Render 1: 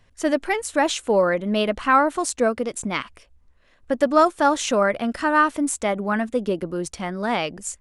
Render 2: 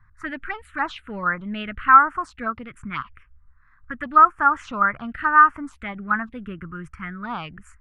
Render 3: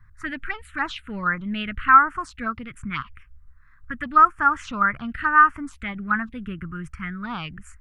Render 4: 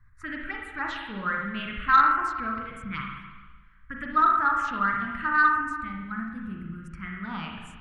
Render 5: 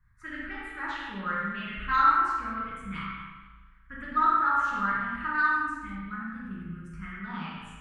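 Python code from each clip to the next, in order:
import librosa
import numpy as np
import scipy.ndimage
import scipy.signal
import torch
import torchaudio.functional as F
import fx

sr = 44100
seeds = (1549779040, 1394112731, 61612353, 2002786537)

y1 = fx.curve_eq(x, sr, hz=(130.0, 210.0, 560.0, 1300.0, 6300.0), db=(0, -10, -22, 6, -26))
y1 = fx.env_phaser(y1, sr, low_hz=490.0, high_hz=3900.0, full_db=-20.5)
y1 = y1 * librosa.db_to_amplitude(4.0)
y2 = fx.peak_eq(y1, sr, hz=670.0, db=-10.0, octaves=2.4)
y2 = y2 * librosa.db_to_amplitude(5.0)
y3 = fx.spec_box(y2, sr, start_s=5.57, length_s=1.32, low_hz=350.0, high_hz=3800.0, gain_db=-9)
y3 = fx.rev_spring(y3, sr, rt60_s=1.3, pass_ms=(36, 55), chirp_ms=35, drr_db=-0.5)
y3 = 10.0 ** (-1.0 / 20.0) * np.tanh(y3 / 10.0 ** (-1.0 / 20.0))
y3 = y3 * librosa.db_to_amplitude(-6.5)
y4 = fx.rev_gated(y3, sr, seeds[0], gate_ms=270, shape='falling', drr_db=-4.0)
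y4 = y4 * librosa.db_to_amplitude(-8.0)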